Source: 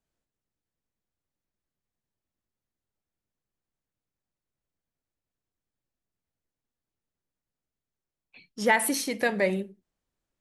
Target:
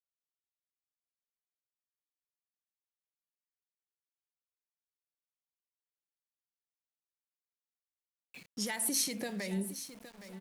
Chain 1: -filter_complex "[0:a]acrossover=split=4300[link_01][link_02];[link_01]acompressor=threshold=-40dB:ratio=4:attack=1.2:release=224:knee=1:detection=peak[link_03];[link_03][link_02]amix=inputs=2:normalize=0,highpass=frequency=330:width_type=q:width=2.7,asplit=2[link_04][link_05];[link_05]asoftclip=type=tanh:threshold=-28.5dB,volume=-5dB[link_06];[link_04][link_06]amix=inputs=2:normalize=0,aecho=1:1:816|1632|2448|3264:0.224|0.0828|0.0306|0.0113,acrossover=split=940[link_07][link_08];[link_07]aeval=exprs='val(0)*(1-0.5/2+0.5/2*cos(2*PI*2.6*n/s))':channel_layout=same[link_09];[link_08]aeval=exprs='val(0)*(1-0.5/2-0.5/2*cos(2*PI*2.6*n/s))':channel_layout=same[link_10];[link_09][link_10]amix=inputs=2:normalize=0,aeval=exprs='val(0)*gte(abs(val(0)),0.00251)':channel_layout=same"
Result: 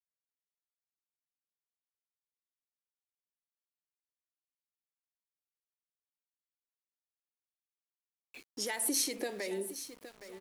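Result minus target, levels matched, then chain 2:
125 Hz band −13.0 dB
-filter_complex "[0:a]acrossover=split=4300[link_01][link_02];[link_01]acompressor=threshold=-40dB:ratio=4:attack=1.2:release=224:knee=1:detection=peak[link_03];[link_03][link_02]amix=inputs=2:normalize=0,highpass=frequency=160:width_type=q:width=2.7,asplit=2[link_04][link_05];[link_05]asoftclip=type=tanh:threshold=-28.5dB,volume=-5dB[link_06];[link_04][link_06]amix=inputs=2:normalize=0,aecho=1:1:816|1632|2448|3264:0.224|0.0828|0.0306|0.0113,acrossover=split=940[link_07][link_08];[link_07]aeval=exprs='val(0)*(1-0.5/2+0.5/2*cos(2*PI*2.6*n/s))':channel_layout=same[link_09];[link_08]aeval=exprs='val(0)*(1-0.5/2-0.5/2*cos(2*PI*2.6*n/s))':channel_layout=same[link_10];[link_09][link_10]amix=inputs=2:normalize=0,aeval=exprs='val(0)*gte(abs(val(0)),0.00251)':channel_layout=same"

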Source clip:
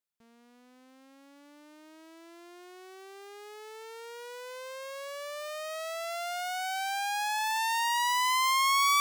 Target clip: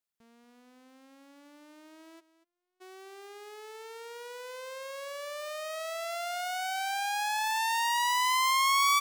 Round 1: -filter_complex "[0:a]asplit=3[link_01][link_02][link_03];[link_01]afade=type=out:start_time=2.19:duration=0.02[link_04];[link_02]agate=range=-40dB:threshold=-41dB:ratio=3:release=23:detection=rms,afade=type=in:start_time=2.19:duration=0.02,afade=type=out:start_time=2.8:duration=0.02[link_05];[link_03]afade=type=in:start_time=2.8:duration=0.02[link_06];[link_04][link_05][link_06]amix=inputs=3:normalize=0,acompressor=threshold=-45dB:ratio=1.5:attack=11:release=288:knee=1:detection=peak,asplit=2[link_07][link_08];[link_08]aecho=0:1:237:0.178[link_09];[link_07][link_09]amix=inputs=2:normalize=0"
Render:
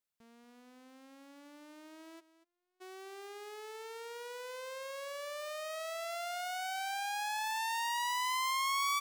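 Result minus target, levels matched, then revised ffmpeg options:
downward compressor: peak gain reduction +8 dB
-filter_complex "[0:a]asplit=3[link_01][link_02][link_03];[link_01]afade=type=out:start_time=2.19:duration=0.02[link_04];[link_02]agate=range=-40dB:threshold=-41dB:ratio=3:release=23:detection=rms,afade=type=in:start_time=2.19:duration=0.02,afade=type=out:start_time=2.8:duration=0.02[link_05];[link_03]afade=type=in:start_time=2.8:duration=0.02[link_06];[link_04][link_05][link_06]amix=inputs=3:normalize=0,asplit=2[link_07][link_08];[link_08]aecho=0:1:237:0.178[link_09];[link_07][link_09]amix=inputs=2:normalize=0"

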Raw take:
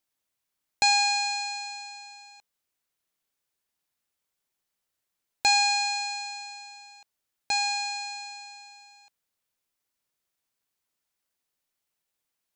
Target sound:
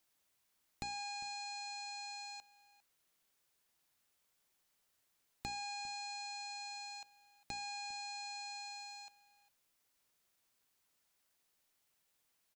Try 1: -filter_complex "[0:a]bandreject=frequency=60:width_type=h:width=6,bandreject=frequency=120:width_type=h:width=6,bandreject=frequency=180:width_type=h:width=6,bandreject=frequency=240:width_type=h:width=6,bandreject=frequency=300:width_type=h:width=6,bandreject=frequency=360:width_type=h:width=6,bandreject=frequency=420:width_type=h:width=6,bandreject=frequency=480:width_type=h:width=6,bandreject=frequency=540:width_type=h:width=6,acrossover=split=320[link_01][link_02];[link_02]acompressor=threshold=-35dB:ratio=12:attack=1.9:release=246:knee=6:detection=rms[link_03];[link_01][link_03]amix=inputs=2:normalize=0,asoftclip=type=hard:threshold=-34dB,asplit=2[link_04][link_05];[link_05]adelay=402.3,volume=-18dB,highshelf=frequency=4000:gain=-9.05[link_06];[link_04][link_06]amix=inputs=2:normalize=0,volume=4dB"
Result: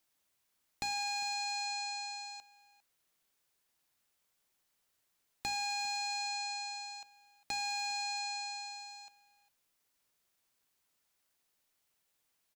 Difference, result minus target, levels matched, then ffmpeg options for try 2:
downward compressor: peak gain reduction −8 dB
-filter_complex "[0:a]bandreject=frequency=60:width_type=h:width=6,bandreject=frequency=120:width_type=h:width=6,bandreject=frequency=180:width_type=h:width=6,bandreject=frequency=240:width_type=h:width=6,bandreject=frequency=300:width_type=h:width=6,bandreject=frequency=360:width_type=h:width=6,bandreject=frequency=420:width_type=h:width=6,bandreject=frequency=480:width_type=h:width=6,bandreject=frequency=540:width_type=h:width=6,acrossover=split=320[link_01][link_02];[link_02]acompressor=threshold=-44dB:ratio=12:attack=1.9:release=246:knee=6:detection=rms[link_03];[link_01][link_03]amix=inputs=2:normalize=0,asoftclip=type=hard:threshold=-34dB,asplit=2[link_04][link_05];[link_05]adelay=402.3,volume=-18dB,highshelf=frequency=4000:gain=-9.05[link_06];[link_04][link_06]amix=inputs=2:normalize=0,volume=4dB"

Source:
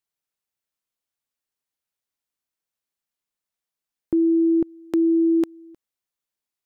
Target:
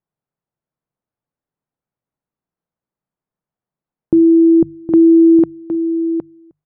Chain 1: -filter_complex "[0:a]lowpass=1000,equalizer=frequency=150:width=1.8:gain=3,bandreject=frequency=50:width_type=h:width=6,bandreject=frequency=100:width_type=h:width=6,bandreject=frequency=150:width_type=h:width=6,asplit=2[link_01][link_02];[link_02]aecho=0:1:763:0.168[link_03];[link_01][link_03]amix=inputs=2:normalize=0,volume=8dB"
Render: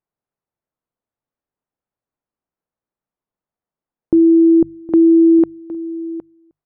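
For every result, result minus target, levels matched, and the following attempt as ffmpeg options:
125 Hz band −5.5 dB; echo-to-direct −7 dB
-filter_complex "[0:a]lowpass=1000,equalizer=frequency=150:width=1.8:gain=10.5,bandreject=frequency=50:width_type=h:width=6,bandreject=frequency=100:width_type=h:width=6,bandreject=frequency=150:width_type=h:width=6,asplit=2[link_01][link_02];[link_02]aecho=0:1:763:0.168[link_03];[link_01][link_03]amix=inputs=2:normalize=0,volume=8dB"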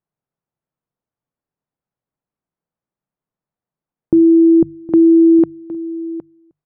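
echo-to-direct −7 dB
-filter_complex "[0:a]lowpass=1000,equalizer=frequency=150:width=1.8:gain=10.5,bandreject=frequency=50:width_type=h:width=6,bandreject=frequency=100:width_type=h:width=6,bandreject=frequency=150:width_type=h:width=6,asplit=2[link_01][link_02];[link_02]aecho=0:1:763:0.376[link_03];[link_01][link_03]amix=inputs=2:normalize=0,volume=8dB"

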